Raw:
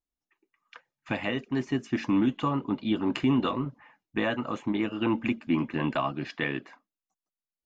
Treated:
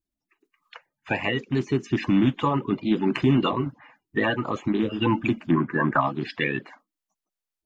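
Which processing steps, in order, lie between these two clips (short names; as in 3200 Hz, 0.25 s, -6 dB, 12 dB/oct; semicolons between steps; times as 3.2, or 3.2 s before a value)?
bin magnitudes rounded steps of 30 dB; 5.51–6.01 resonant high shelf 2200 Hz -11 dB, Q 3; gain +5 dB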